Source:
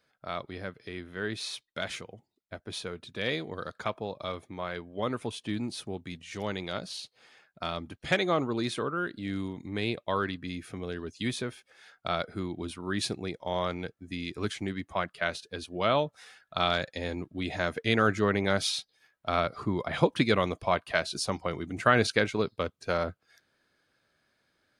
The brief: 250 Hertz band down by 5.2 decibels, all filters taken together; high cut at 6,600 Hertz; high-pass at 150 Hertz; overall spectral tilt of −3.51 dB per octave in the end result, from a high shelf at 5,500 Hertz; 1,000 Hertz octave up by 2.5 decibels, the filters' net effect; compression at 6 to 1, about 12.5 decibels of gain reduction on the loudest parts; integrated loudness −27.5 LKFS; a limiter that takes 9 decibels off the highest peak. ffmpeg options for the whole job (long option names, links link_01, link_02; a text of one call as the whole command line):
ffmpeg -i in.wav -af "highpass=150,lowpass=6600,equalizer=frequency=250:width_type=o:gain=-6.5,equalizer=frequency=1000:width_type=o:gain=3.5,highshelf=frequency=5500:gain=4,acompressor=threshold=-29dB:ratio=6,volume=10dB,alimiter=limit=-11.5dB:level=0:latency=1" out.wav